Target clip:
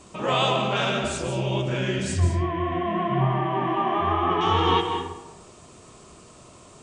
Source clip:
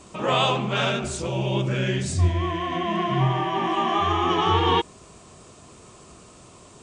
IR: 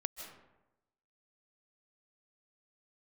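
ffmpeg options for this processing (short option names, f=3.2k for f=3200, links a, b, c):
-filter_complex "[0:a]asettb=1/sr,asplit=3[a][b][c];[a]atrim=end=2.204[d];[b]atrim=start=2.2:end=4.41,asetpts=PTS-STARTPTS,afade=t=in:d=0.004:c=qsin,afade=t=out:st=2.206:d=0.004:c=qsin,lowpass=2.1k[e];[c]atrim=start=4.406[f];[d][e]acrossfade=d=0.004:c1=hsin:c2=qsin[g];[g][f]acrossfade=d=0.004:c1=qsin:c2=hsin[h];[1:a]atrim=start_sample=2205[i];[h][i]afir=irnorm=-1:irlink=0"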